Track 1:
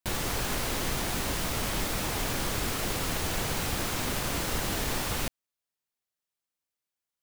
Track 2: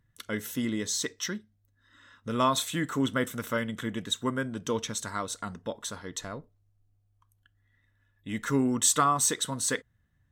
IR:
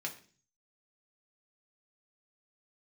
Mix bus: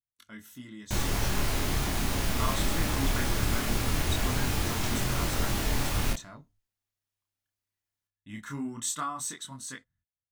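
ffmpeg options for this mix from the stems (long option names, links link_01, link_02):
-filter_complex "[0:a]lowshelf=frequency=180:gain=9,adelay=850,volume=0.5dB,asplit=2[link_01][link_02];[link_02]volume=-11.5dB[link_03];[1:a]agate=range=-23dB:threshold=-58dB:ratio=16:detection=peak,equalizer=frequency=460:width=2.8:gain=-12.5,dynaudnorm=framelen=700:gausssize=5:maxgain=5.5dB,volume=-9.5dB[link_04];[2:a]atrim=start_sample=2205[link_05];[link_03][link_05]afir=irnorm=-1:irlink=0[link_06];[link_01][link_04][link_06]amix=inputs=3:normalize=0,bandreject=frequency=510:width=12,flanger=delay=22.5:depth=7.9:speed=0.2"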